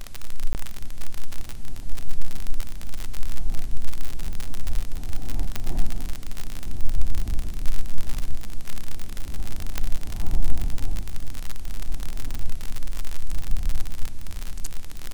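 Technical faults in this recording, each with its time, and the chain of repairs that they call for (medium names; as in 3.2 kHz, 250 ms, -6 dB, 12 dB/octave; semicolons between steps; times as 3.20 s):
crackle 57 per s -20 dBFS
0.53–0.55 s: dropout 19 ms
5.56 s: pop -10 dBFS
9.78 s: pop -8 dBFS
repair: de-click; interpolate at 0.53 s, 19 ms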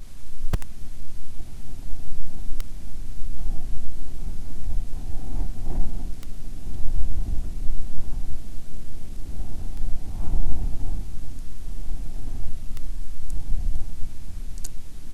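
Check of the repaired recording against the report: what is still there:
9.78 s: pop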